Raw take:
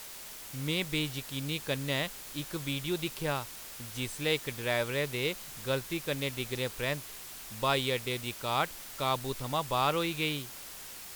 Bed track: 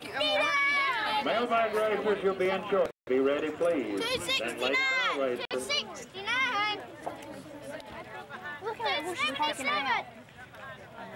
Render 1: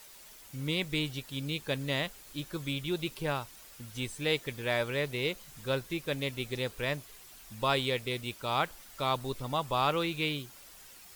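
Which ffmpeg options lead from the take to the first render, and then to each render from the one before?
ffmpeg -i in.wav -af "afftdn=noise_reduction=9:noise_floor=-46" out.wav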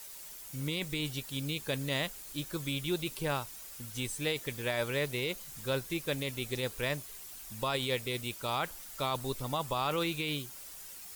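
ffmpeg -i in.wav -filter_complex "[0:a]acrossover=split=5900[link_01][link_02];[link_02]acontrast=70[link_03];[link_01][link_03]amix=inputs=2:normalize=0,alimiter=limit=-21.5dB:level=0:latency=1:release=11" out.wav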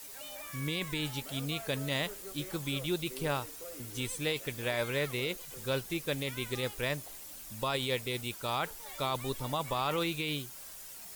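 ffmpeg -i in.wav -i bed.wav -filter_complex "[1:a]volume=-20.5dB[link_01];[0:a][link_01]amix=inputs=2:normalize=0" out.wav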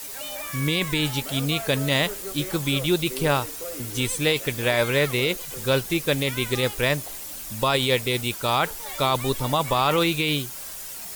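ffmpeg -i in.wav -af "volume=11dB" out.wav

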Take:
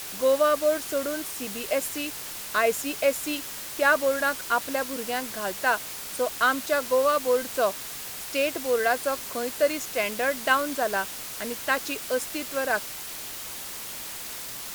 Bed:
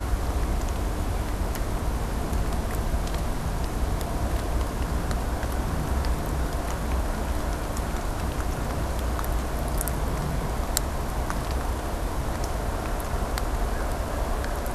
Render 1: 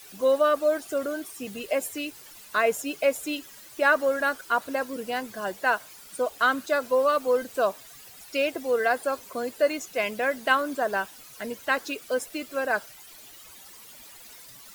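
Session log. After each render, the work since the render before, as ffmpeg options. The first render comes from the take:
ffmpeg -i in.wav -af "afftdn=noise_reduction=14:noise_floor=-37" out.wav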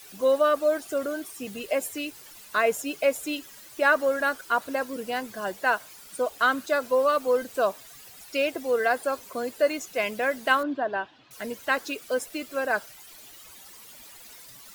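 ffmpeg -i in.wav -filter_complex "[0:a]asettb=1/sr,asplit=3[link_01][link_02][link_03];[link_01]atrim=end=10.634[link_04];[link_02]atrim=start=10.63:end=11.31,asetpts=PTS-STARTPTS,afade=type=in:duration=0.004:curve=qsin,afade=type=out:start_time=0.676:duration=0.004:curve=qsin,highpass=100,equalizer=frequency=120:width_type=q:width=4:gain=7,equalizer=frequency=190:width_type=q:width=4:gain=-6,equalizer=frequency=300:width_type=q:width=4:gain=5,equalizer=frequency=480:width_type=q:width=4:gain=-6,equalizer=frequency=1300:width_type=q:width=4:gain=-6,equalizer=frequency=2200:width_type=q:width=4:gain=-8,lowpass=frequency=3400:width=0.5412,lowpass=frequency=3400:width=1.3066[link_05];[link_03]atrim=start=11.306[link_06];[link_04][link_05]acrossfade=duration=0.004:curve1=hsin:curve2=qsin[link_07];[link_07][link_06]acrossfade=duration=0.004:curve1=qsin:curve2=hsin" out.wav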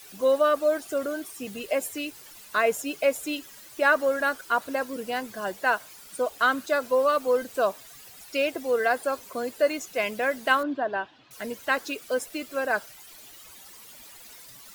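ffmpeg -i in.wav -af anull out.wav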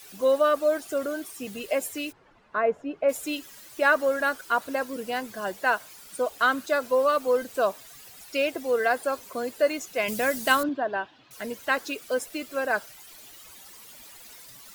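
ffmpeg -i in.wav -filter_complex "[0:a]asplit=3[link_01][link_02][link_03];[link_01]afade=type=out:start_time=2.11:duration=0.02[link_04];[link_02]lowpass=1300,afade=type=in:start_time=2.11:duration=0.02,afade=type=out:start_time=3.08:duration=0.02[link_05];[link_03]afade=type=in:start_time=3.08:duration=0.02[link_06];[link_04][link_05][link_06]amix=inputs=3:normalize=0,asettb=1/sr,asplit=3[link_07][link_08][link_09];[link_07]atrim=end=10.084[link_10];[link_08]atrim=start=10.08:end=10.69,asetpts=PTS-STARTPTS,afade=type=in:duration=0.004:curve=qsin,afade=type=out:start_time=0.606:duration=0.004:curve=qsin,bass=frequency=250:gain=9,treble=frequency=4000:gain=12[link_11];[link_09]atrim=start=10.686[link_12];[link_10][link_11]acrossfade=duration=0.004:curve1=hsin:curve2=qsin[link_13];[link_13][link_12]acrossfade=duration=0.004:curve1=qsin:curve2=hsin" out.wav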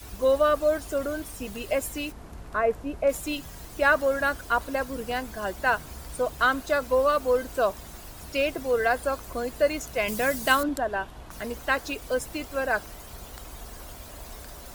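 ffmpeg -i in.wav -i bed.wav -filter_complex "[1:a]volume=-16dB[link_01];[0:a][link_01]amix=inputs=2:normalize=0" out.wav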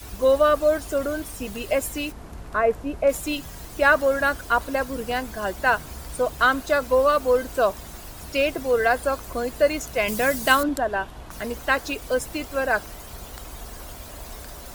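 ffmpeg -i in.wav -af "volume=3.5dB" out.wav

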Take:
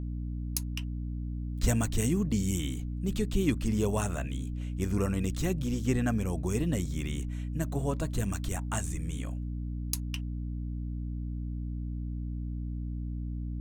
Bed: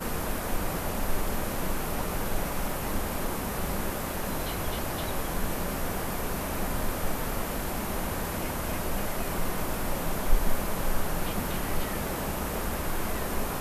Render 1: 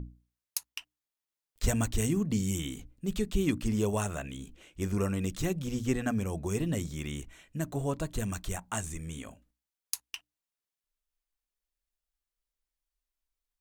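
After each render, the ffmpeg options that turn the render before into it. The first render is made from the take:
ffmpeg -i in.wav -af "bandreject=frequency=60:width_type=h:width=6,bandreject=frequency=120:width_type=h:width=6,bandreject=frequency=180:width_type=h:width=6,bandreject=frequency=240:width_type=h:width=6,bandreject=frequency=300:width_type=h:width=6" out.wav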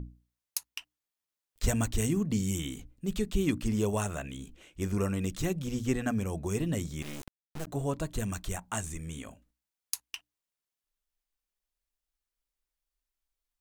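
ffmpeg -i in.wav -filter_complex "[0:a]asettb=1/sr,asplit=3[link_01][link_02][link_03];[link_01]atrim=end=7.024[link_04];[link_02]atrim=start=7.02:end=7.67,asetpts=PTS-STARTPTS,afade=type=in:duration=0.004:curve=qsin,afade=type=out:start_time=0.646:duration=0.004:curve=qsin,acrusher=bits=4:dc=4:mix=0:aa=0.000001[link_05];[link_03]atrim=start=7.666[link_06];[link_04][link_05]acrossfade=duration=0.004:curve1=hsin:curve2=qsin[link_07];[link_07][link_06]acrossfade=duration=0.004:curve1=qsin:curve2=hsin" out.wav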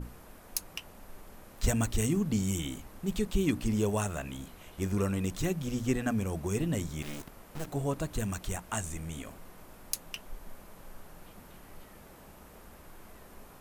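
ffmpeg -i in.wav -i bed.wav -filter_complex "[1:a]volume=-21dB[link_01];[0:a][link_01]amix=inputs=2:normalize=0" out.wav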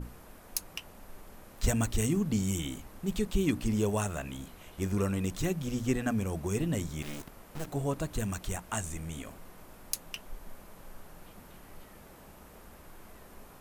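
ffmpeg -i in.wav -af anull out.wav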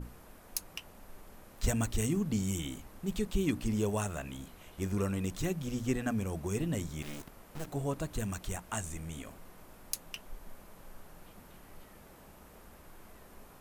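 ffmpeg -i in.wav -af "volume=-2.5dB" out.wav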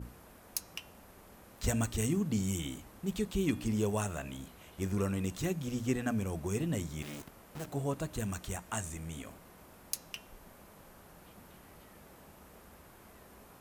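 ffmpeg -i in.wav -af "highpass=49,bandreject=frequency=305.5:width_type=h:width=4,bandreject=frequency=611:width_type=h:width=4,bandreject=frequency=916.5:width_type=h:width=4,bandreject=frequency=1222:width_type=h:width=4,bandreject=frequency=1527.5:width_type=h:width=4,bandreject=frequency=1833:width_type=h:width=4,bandreject=frequency=2138.5:width_type=h:width=4,bandreject=frequency=2444:width_type=h:width=4,bandreject=frequency=2749.5:width_type=h:width=4,bandreject=frequency=3055:width_type=h:width=4,bandreject=frequency=3360.5:width_type=h:width=4,bandreject=frequency=3666:width_type=h:width=4,bandreject=frequency=3971.5:width_type=h:width=4,bandreject=frequency=4277:width_type=h:width=4,bandreject=frequency=4582.5:width_type=h:width=4,bandreject=frequency=4888:width_type=h:width=4,bandreject=frequency=5193.5:width_type=h:width=4,bandreject=frequency=5499:width_type=h:width=4,bandreject=frequency=5804.5:width_type=h:width=4,bandreject=frequency=6110:width_type=h:width=4,bandreject=frequency=6415.5:width_type=h:width=4,bandreject=frequency=6721:width_type=h:width=4,bandreject=frequency=7026.5:width_type=h:width=4,bandreject=frequency=7332:width_type=h:width=4,bandreject=frequency=7637.5:width_type=h:width=4,bandreject=frequency=7943:width_type=h:width=4,bandreject=frequency=8248.5:width_type=h:width=4,bandreject=frequency=8554:width_type=h:width=4,bandreject=frequency=8859.5:width_type=h:width=4" out.wav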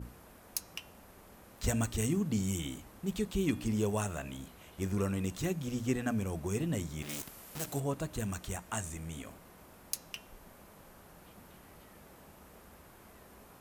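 ffmpeg -i in.wav -filter_complex "[0:a]asettb=1/sr,asplit=3[link_01][link_02][link_03];[link_01]atrim=end=7.094[link_04];[link_02]atrim=start=7.09:end=7.8,asetpts=PTS-STARTPTS,afade=type=in:duration=0.004:curve=qsin,afade=type=out:start_time=0.706:duration=0.004:curve=qsin,highshelf=frequency=2900:gain=12[link_05];[link_03]atrim=start=7.796[link_06];[link_04][link_05]acrossfade=duration=0.004:curve1=hsin:curve2=qsin[link_07];[link_07][link_06]acrossfade=duration=0.004:curve1=qsin:curve2=hsin" out.wav

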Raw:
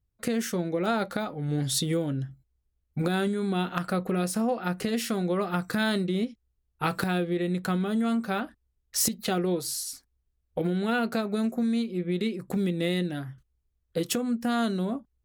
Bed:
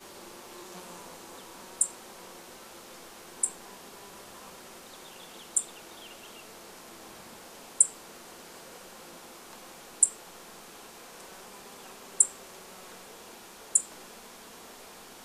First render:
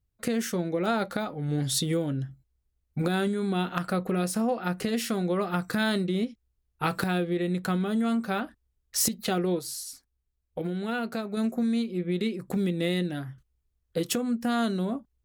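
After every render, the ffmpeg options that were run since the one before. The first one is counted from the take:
ffmpeg -i in.wav -filter_complex "[0:a]asplit=3[link_01][link_02][link_03];[link_01]atrim=end=9.592[link_04];[link_02]atrim=start=9.588:end=11.372,asetpts=PTS-STARTPTS,volume=-4dB[link_05];[link_03]atrim=start=11.368[link_06];[link_04][link_05]acrossfade=duration=0.004:curve1=hsin:curve2=hsin[link_07];[link_07][link_06]acrossfade=duration=0.004:curve1=hsin:curve2=hsin" out.wav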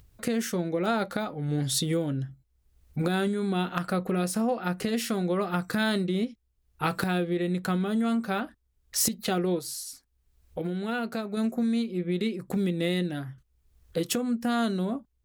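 ffmpeg -i in.wav -af "acompressor=mode=upward:threshold=-41dB:ratio=2.5" out.wav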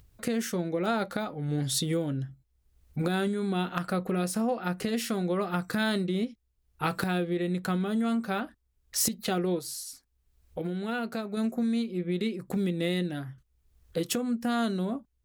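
ffmpeg -i in.wav -af "volume=-1.5dB" out.wav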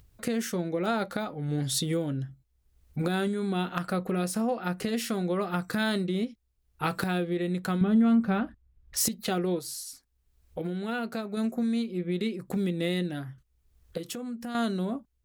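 ffmpeg -i in.wav -filter_complex "[0:a]asettb=1/sr,asplit=3[link_01][link_02][link_03];[link_01]atrim=end=7.814[link_04];[link_02]atrim=start=7.81:end=8.97,asetpts=PTS-STARTPTS,afade=type=in:duration=0.004:curve=qsin,afade=type=out:start_time=1.156:duration=0.004:curve=qsin,bass=frequency=250:gain=11,treble=frequency=4000:gain=-12[link_05];[link_03]atrim=start=8.966[link_06];[link_04][link_05]acrossfade=duration=0.004:curve1=hsin:curve2=qsin[link_07];[link_07][link_06]acrossfade=duration=0.004:curve1=qsin:curve2=hsin,asettb=1/sr,asplit=3[link_08][link_09][link_10];[link_08]atrim=end=13.974[link_11];[link_09]atrim=start=13.97:end=14.55,asetpts=PTS-STARTPTS,afade=type=in:duration=0.004:curve=qsin,afade=type=out:start_time=0.576:duration=0.004:curve=qsin,acompressor=threshold=-35dB:ratio=3:attack=3.2:release=140:knee=1:detection=peak[link_12];[link_10]atrim=start=14.546[link_13];[link_11][link_12]acrossfade=duration=0.004:curve1=hsin:curve2=qsin[link_14];[link_14][link_13]acrossfade=duration=0.004:curve1=qsin:curve2=hsin" out.wav

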